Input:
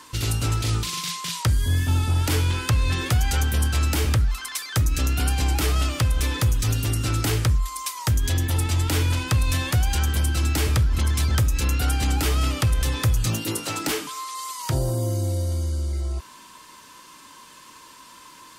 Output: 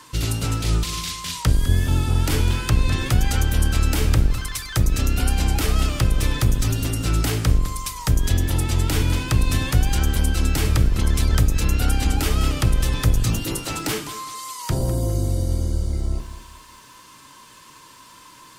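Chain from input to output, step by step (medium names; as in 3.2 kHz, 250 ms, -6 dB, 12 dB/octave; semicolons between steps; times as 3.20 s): octave divider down 1 oct, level 0 dB; bit-crushed delay 203 ms, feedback 35%, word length 8-bit, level -13 dB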